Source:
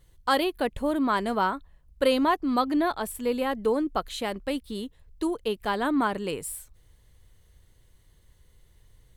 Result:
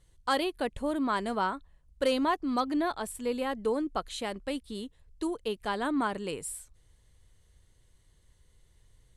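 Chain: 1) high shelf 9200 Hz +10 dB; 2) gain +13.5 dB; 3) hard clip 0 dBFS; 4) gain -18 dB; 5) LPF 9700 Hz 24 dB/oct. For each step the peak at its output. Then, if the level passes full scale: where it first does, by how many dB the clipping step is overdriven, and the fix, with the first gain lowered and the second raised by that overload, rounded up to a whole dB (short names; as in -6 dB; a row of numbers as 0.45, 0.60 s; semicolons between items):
-10.0, +3.5, 0.0, -18.0, -17.5 dBFS; step 2, 3.5 dB; step 2 +9.5 dB, step 4 -14 dB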